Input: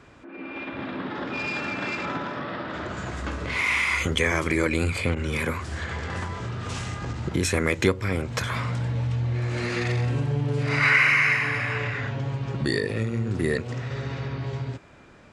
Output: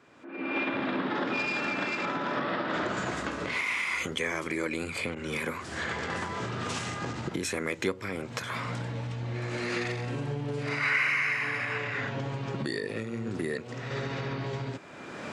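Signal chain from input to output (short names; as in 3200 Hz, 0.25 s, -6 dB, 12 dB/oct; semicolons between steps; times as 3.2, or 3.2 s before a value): recorder AGC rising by 25 dB/s; HPF 180 Hz 12 dB/oct; gain -7.5 dB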